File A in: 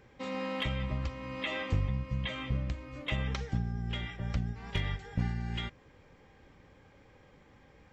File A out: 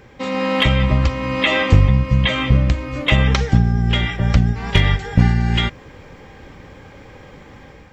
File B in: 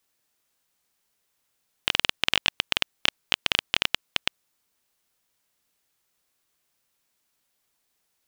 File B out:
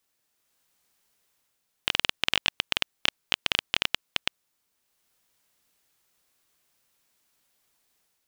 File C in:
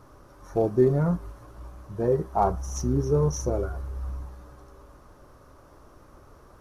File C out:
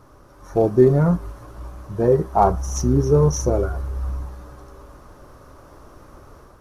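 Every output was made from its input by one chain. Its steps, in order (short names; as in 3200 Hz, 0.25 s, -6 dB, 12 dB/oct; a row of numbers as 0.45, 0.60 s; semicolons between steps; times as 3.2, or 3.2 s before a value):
AGC gain up to 5 dB; normalise peaks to -3 dBFS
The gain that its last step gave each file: +13.5, -2.0, +2.0 dB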